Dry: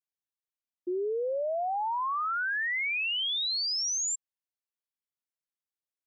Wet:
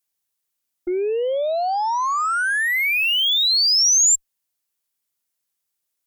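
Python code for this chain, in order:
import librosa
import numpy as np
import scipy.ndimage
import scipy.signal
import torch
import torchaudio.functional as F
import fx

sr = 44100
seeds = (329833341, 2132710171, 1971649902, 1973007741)

y = fx.cheby_harmonics(x, sr, harmonics=(2, 6), levels_db=(-32, -25), full_scale_db=-27.0)
y = fx.high_shelf(y, sr, hz=5200.0, db=10.5)
y = y * librosa.db_to_amplitude(8.5)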